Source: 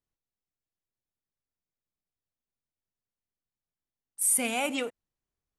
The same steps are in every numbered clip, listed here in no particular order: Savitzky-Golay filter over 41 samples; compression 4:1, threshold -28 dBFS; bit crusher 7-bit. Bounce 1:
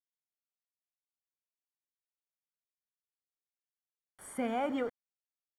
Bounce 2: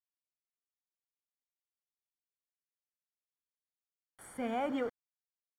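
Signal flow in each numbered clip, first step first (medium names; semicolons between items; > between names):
bit crusher > Savitzky-Golay filter > compression; compression > bit crusher > Savitzky-Golay filter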